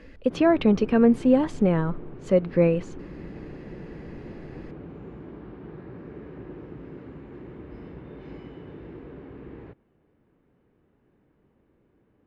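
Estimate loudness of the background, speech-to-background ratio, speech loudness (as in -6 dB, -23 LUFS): -42.0 LUFS, 20.0 dB, -22.0 LUFS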